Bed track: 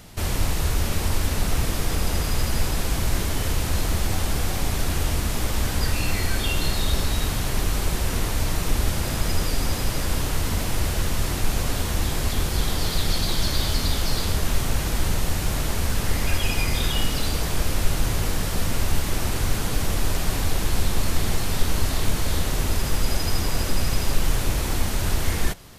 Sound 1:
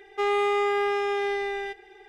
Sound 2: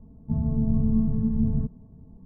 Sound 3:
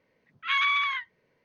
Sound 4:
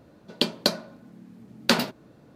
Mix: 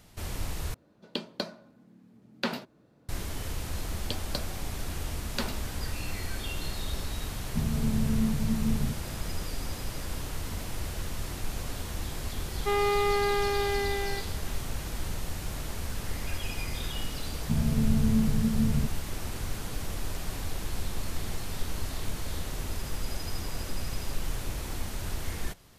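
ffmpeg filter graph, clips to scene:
-filter_complex "[4:a]asplit=2[s0][s1];[2:a]asplit=2[s2][s3];[0:a]volume=0.282[s4];[s0]acrossover=split=4400[s5][s6];[s6]acompressor=threshold=0.02:ratio=4:attack=1:release=60[s7];[s5][s7]amix=inputs=2:normalize=0[s8];[s1]acrusher=bits=10:mix=0:aa=0.000001[s9];[s4]asplit=2[s10][s11];[s10]atrim=end=0.744[s12];[s8]atrim=end=2.35,asetpts=PTS-STARTPTS,volume=0.355[s13];[s11]atrim=start=3.086[s14];[s9]atrim=end=2.35,asetpts=PTS-STARTPTS,volume=0.237,afade=t=in:d=0.004:c=hsin,afade=t=out:st=2.346:d=0.004:c=hsin,adelay=162729S[s15];[s2]atrim=end=2.25,asetpts=PTS-STARTPTS,volume=0.596,afade=t=in:d=0.004:c=hsin,afade=t=out:st=2.246:d=0.004:c=hsin,adelay=7260[s16];[1:a]atrim=end=2.08,asetpts=PTS-STARTPTS,volume=0.75,afade=t=in:d=0.004:c=hsin,afade=t=out:st=2.076:d=0.004:c=hsin,adelay=12480[s17];[s3]atrim=end=2.25,asetpts=PTS-STARTPTS,volume=0.794,afade=t=in:d=0.004:c=hsin,afade=t=out:st=2.246:d=0.004:c=hsin,adelay=17200[s18];[s12][s13]acrossfade=d=0.004:c1=hsin:c2=hsin[s19];[s19][s14]acrossfade=d=0.004:c1=hsin:c2=hsin[s20];[s20][s15][s16][s17][s18]amix=inputs=5:normalize=0"

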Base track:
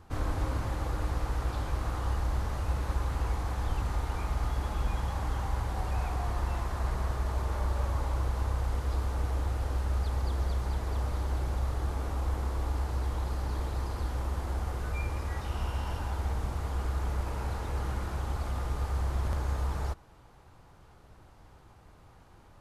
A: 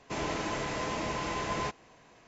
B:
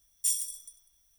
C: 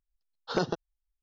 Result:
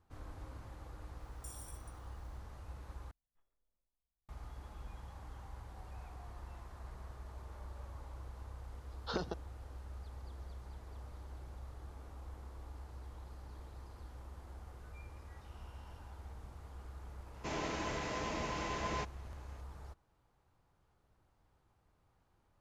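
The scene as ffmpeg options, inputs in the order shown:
-filter_complex "[2:a]asplit=2[s0][s1];[0:a]volume=0.126[s2];[s0]acompressor=threshold=0.0224:ratio=6:attack=3.2:release=140:knee=1:detection=peak[s3];[s1]lowpass=f=1100:w=0.5412,lowpass=f=1100:w=1.3066[s4];[3:a]acompressor=threshold=0.0398:ratio=4:attack=12:release=606:knee=1:detection=rms[s5];[1:a]aresample=16000,aresample=44100[s6];[s2]asplit=2[s7][s8];[s7]atrim=end=3.114[s9];[s4]atrim=end=1.18,asetpts=PTS-STARTPTS,volume=0.188[s10];[s8]atrim=start=4.286[s11];[s3]atrim=end=1.18,asetpts=PTS-STARTPTS,volume=0.188,afade=t=in:d=0.004:c=hsin,afade=t=out:st=1.176:d=0.004:c=hsin,adelay=1200[s12];[s5]atrim=end=1.22,asetpts=PTS-STARTPTS,volume=0.596,afade=t=in:d=0.004:c=hsin,afade=t=out:st=1.216:d=0.004:c=hsin,adelay=8590[s13];[s6]atrim=end=2.27,asetpts=PTS-STARTPTS,volume=0.531,afade=t=in:d=0.004:c=hsin,afade=t=out:st=2.266:d=0.004:c=hsin,adelay=17340[s14];[s9][s10]acrossfade=d=0.004:c1=hsin:c2=hsin[s15];[s15][s11]acrossfade=d=0.004:c1=hsin:c2=hsin[s16];[s16][s12][s13][s14]amix=inputs=4:normalize=0"

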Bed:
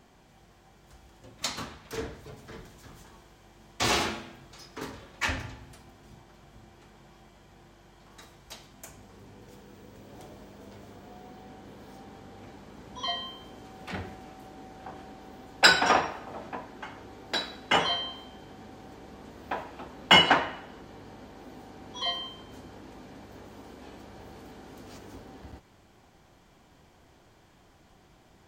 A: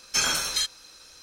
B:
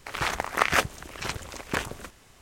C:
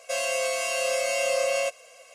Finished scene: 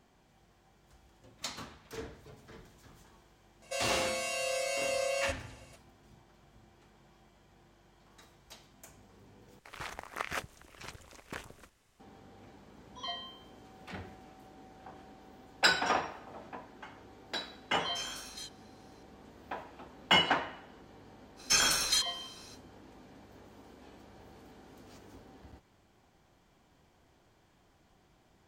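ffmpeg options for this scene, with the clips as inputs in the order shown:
-filter_complex "[1:a]asplit=2[s0][s1];[0:a]volume=0.422[s2];[3:a]equalizer=f=4000:w=4.3:g=6[s3];[s0]flanger=delay=16:depth=7.1:speed=1.7[s4];[s2]asplit=2[s5][s6];[s5]atrim=end=9.594[s7];[2:a]atrim=end=2.41,asetpts=PTS-STARTPTS,volume=0.188[s8];[s6]atrim=start=11.996[s9];[s3]atrim=end=2.14,asetpts=PTS-STARTPTS,volume=0.398,afade=t=in:d=0.004:c=hsin,afade=t=out:st=2.136:d=0.004:c=hsin,adelay=3620[s10];[s4]atrim=end=1.22,asetpts=PTS-STARTPTS,volume=0.168,afade=t=in:d=0.004:c=hsin,afade=t=out:st=1.216:d=0.004:c=hsin,adelay=17810[s11];[s1]atrim=end=1.22,asetpts=PTS-STARTPTS,volume=0.75,afade=t=in:d=0.05,afade=t=out:st=1.17:d=0.05,adelay=21360[s12];[s7][s8]acrossfade=d=0.004:c1=hsin:c2=hsin[s13];[s13][s9]acrossfade=d=0.004:c1=hsin:c2=hsin[s14];[s14][s10][s11][s12]amix=inputs=4:normalize=0"

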